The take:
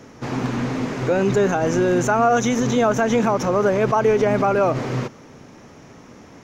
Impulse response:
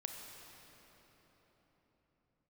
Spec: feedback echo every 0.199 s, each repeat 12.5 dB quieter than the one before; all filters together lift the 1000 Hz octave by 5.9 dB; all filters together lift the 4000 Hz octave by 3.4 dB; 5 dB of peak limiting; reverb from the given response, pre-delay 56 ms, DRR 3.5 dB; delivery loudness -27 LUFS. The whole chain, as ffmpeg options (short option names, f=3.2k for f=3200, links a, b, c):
-filter_complex "[0:a]equalizer=f=1k:t=o:g=8,equalizer=f=4k:t=o:g=4,alimiter=limit=-7dB:level=0:latency=1,aecho=1:1:199|398|597:0.237|0.0569|0.0137,asplit=2[a][b];[1:a]atrim=start_sample=2205,adelay=56[c];[b][c]afir=irnorm=-1:irlink=0,volume=-2dB[d];[a][d]amix=inputs=2:normalize=0,volume=-10.5dB"